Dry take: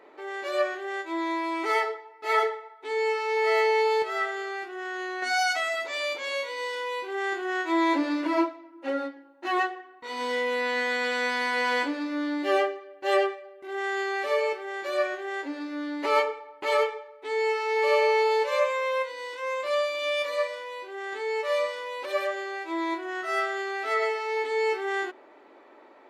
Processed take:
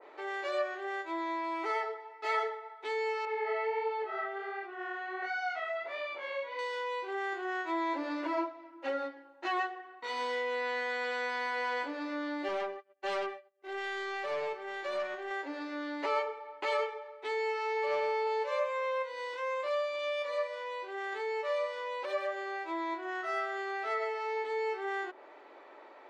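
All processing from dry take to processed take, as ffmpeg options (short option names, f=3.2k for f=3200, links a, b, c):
-filter_complex "[0:a]asettb=1/sr,asplit=3[a][b][c];[a]atrim=end=3.254[d];[b]atrim=start=3.25:end=6.59,asetpts=PTS-STARTPTS,afade=t=in:d=0.004:c=qsin,afade=t=out:st=3.336:d=0.004:c=qsin,lowpass=2.8k,flanger=delay=19.5:depth=6.4:speed=1.4[e];[c]atrim=start=6.586[f];[d][e]acrossfade=d=0.004:c1=hsin:c2=qsin[g];[g][f]acrossfade=d=0.004:c1=qsin:c2=hsin,asettb=1/sr,asplit=3[h][i][j];[h]atrim=end=12.484[k];[i]atrim=start=12.48:end=15.31,asetpts=PTS-STARTPTS,afade=t=in:d=0.004:c=qsin,afade=t=out:st=2.826:d=0.004:c=qsin,agate=range=-48dB:threshold=-42dB:ratio=16:release=100:detection=peak,acompressor=mode=upward:threshold=-42dB:ratio=2.5:attack=3.2:release=140:knee=2.83:detection=peak,aeval=exprs='(tanh(17.8*val(0)+0.5)-tanh(0.5))/17.8':c=same[l];[j]atrim=start=15.306[m];[k][l]acrossfade=d=0.004:c1=hsin:c2=qsin[n];[n][m]acrossfade=d=0.004:c1=qsin:c2=hsin,asettb=1/sr,asplit=3[o][p][q];[o]atrim=end=17.864[r];[p]atrim=start=17.86:end=18.27,asetpts=PTS-STARTPTS,afade=t=in:d=0.004:c=qsin,afade=t=out:st=0.406:d=0.004:c=qsin,acrossover=split=5700[s][t];[t]acompressor=threshold=-60dB:ratio=4:attack=1:release=60[u];[s][u]amix=inputs=2:normalize=0,asoftclip=type=hard:threshold=-17.5dB[v];[q]atrim=start=18.266[w];[r][v]acrossfade=d=0.004:c1=hsin:c2=qsin[x];[x][w]acrossfade=d=0.004:c1=qsin:c2=hsin,acrossover=split=360 7900:gain=0.2 1 0.141[y][z][aa];[y][z][aa]amix=inputs=3:normalize=0,acompressor=threshold=-35dB:ratio=2,adynamicequalizer=threshold=0.00562:dfrequency=1700:dqfactor=0.7:tfrequency=1700:tqfactor=0.7:attack=5:release=100:ratio=0.375:range=3:mode=cutabove:tftype=highshelf,volume=1dB"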